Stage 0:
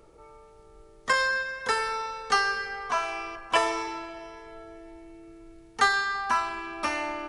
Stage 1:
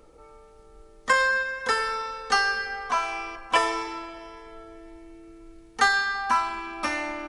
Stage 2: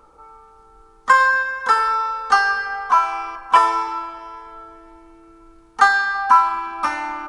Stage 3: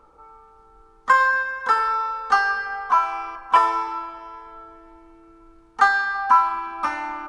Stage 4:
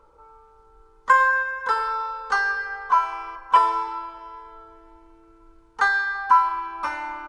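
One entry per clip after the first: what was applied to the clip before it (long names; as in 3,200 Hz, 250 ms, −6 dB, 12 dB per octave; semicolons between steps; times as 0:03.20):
comb filter 3.9 ms, depth 38%; level +1 dB
flat-topped bell 1,100 Hz +12 dB 1.1 octaves; hum removal 118.7 Hz, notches 11; level −1 dB
high-shelf EQ 5,100 Hz −8 dB; level −2.5 dB
comb filter 2 ms, depth 48%; level −3 dB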